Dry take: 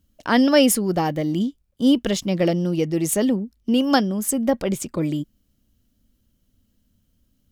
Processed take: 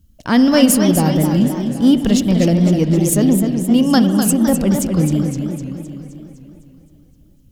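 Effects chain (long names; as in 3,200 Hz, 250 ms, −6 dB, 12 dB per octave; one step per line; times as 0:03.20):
bass and treble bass +12 dB, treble +5 dB
in parallel at −6 dB: soft clipping −13.5 dBFS, distortion −12 dB
on the sum: convolution reverb RT60 2.8 s, pre-delay 50 ms, DRR 10.5 dB
feedback echo with a swinging delay time 257 ms, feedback 57%, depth 187 cents, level −7 dB
level −2.5 dB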